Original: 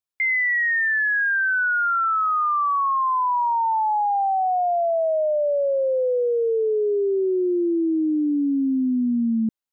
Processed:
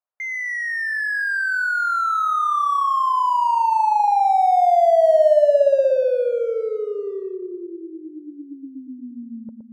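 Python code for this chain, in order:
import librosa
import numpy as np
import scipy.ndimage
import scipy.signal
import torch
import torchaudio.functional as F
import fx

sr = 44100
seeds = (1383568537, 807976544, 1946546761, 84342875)

p1 = scipy.signal.sosfilt(scipy.signal.butter(4, 1700.0, 'lowpass', fs=sr, output='sos'), x)
p2 = fx.low_shelf_res(p1, sr, hz=430.0, db=-11.5, q=3.0)
p3 = np.clip(p2, -10.0 ** (-30.5 / 20.0), 10.0 ** (-30.5 / 20.0))
p4 = p2 + (p3 * librosa.db_to_amplitude(-6.0))
p5 = fx.echo_filtered(p4, sr, ms=117, feedback_pct=68, hz=1100.0, wet_db=-5.0)
y = p5 * librosa.db_to_amplitude(-2.0)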